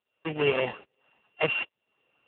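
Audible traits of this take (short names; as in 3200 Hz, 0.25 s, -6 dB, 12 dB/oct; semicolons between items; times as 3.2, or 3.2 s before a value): a buzz of ramps at a fixed pitch in blocks of 16 samples; tremolo saw up 1.2 Hz, depth 95%; AMR-NB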